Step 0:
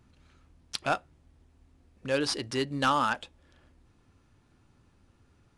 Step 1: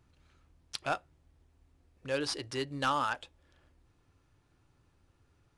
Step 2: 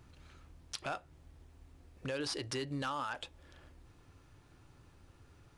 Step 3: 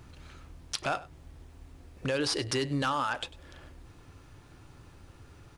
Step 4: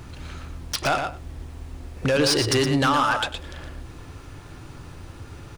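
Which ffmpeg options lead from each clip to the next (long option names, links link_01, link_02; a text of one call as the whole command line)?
ffmpeg -i in.wav -af "equalizer=frequency=220:width=4.8:gain=-11.5,volume=-4.5dB" out.wav
ffmpeg -i in.wav -af "alimiter=level_in=6dB:limit=-24dB:level=0:latency=1:release=27,volume=-6dB,acompressor=threshold=-48dB:ratio=2,volume=8dB" out.wav
ffmpeg -i in.wav -af "aecho=1:1:98:0.112,volume=8dB" out.wav
ffmpeg -i in.wav -filter_complex "[0:a]aeval=exprs='0.168*sin(PI/2*2.24*val(0)/0.168)':channel_layout=same,asplit=2[link_01][link_02];[link_02]adelay=116.6,volume=-6dB,highshelf=frequency=4000:gain=-2.62[link_03];[link_01][link_03]amix=inputs=2:normalize=0" out.wav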